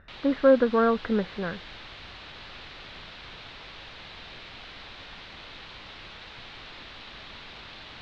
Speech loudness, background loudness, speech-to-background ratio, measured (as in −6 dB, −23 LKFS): −24.0 LKFS, −42.5 LKFS, 18.5 dB